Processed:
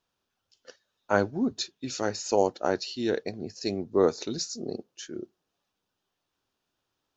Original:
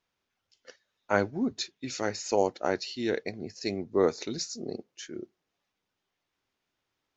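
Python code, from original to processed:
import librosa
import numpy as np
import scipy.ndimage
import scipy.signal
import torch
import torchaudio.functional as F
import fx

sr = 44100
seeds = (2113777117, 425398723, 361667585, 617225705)

y = fx.peak_eq(x, sr, hz=2100.0, db=-10.0, octaves=0.35)
y = y * 10.0 ** (2.0 / 20.0)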